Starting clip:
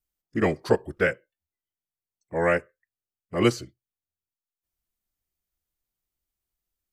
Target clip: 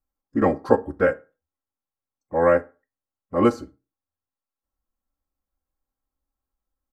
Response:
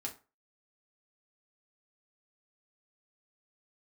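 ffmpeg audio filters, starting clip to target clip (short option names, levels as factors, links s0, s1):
-filter_complex "[0:a]highshelf=f=1700:t=q:w=1.5:g=-12,aecho=1:1:3.7:0.48,asplit=2[s0][s1];[1:a]atrim=start_sample=2205[s2];[s1][s2]afir=irnorm=-1:irlink=0,volume=0.562[s3];[s0][s3]amix=inputs=2:normalize=0"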